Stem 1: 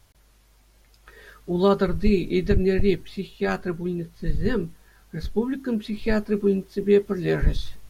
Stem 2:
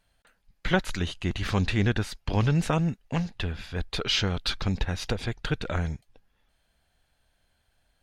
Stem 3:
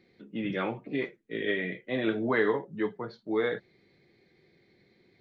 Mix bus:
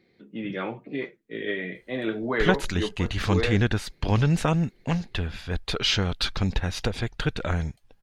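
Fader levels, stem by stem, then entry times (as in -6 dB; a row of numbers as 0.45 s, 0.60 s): mute, +2.0 dB, 0.0 dB; mute, 1.75 s, 0.00 s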